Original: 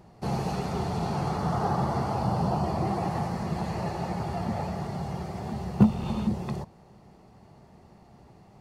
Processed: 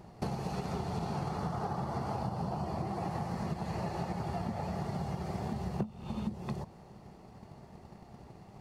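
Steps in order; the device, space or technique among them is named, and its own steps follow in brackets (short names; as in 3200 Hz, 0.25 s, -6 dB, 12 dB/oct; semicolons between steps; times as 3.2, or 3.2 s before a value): drum-bus smash (transient shaper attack +8 dB, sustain +1 dB; compressor 10:1, threshold -31 dBFS, peak gain reduction 25.5 dB; soft clip -22.5 dBFS, distortion -24 dB)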